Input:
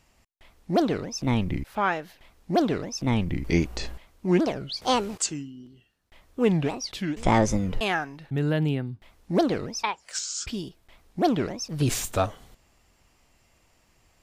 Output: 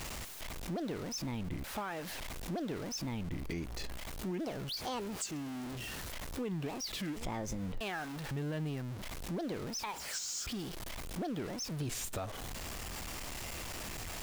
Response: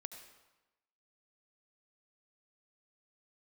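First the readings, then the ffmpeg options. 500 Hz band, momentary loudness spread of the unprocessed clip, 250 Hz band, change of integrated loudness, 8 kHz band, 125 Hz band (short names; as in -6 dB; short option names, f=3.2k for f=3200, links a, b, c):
-14.0 dB, 10 LU, -12.5 dB, -12.5 dB, -7.0 dB, -11.5 dB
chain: -af "aeval=exprs='val(0)+0.5*0.0355*sgn(val(0))':c=same,alimiter=limit=-16dB:level=0:latency=1:release=82,acompressor=threshold=-33dB:ratio=2,volume=-7dB"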